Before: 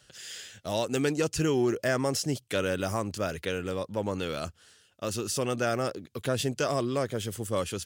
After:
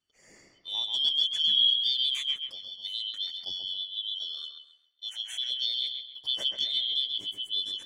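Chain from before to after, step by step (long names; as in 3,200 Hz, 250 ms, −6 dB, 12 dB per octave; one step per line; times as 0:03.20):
band-splitting scrambler in four parts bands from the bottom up 3412
0:02.36–0:02.85: downward compressor 2.5 to 1, threshold −37 dBFS, peak gain reduction 9.5 dB
0:03.71–0:05.50: high-pass filter 920 Hz 6 dB per octave
bucket-brigade delay 134 ms, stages 4,096, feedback 43%, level −4 dB
every bin expanded away from the loudest bin 1.5 to 1
level −1.5 dB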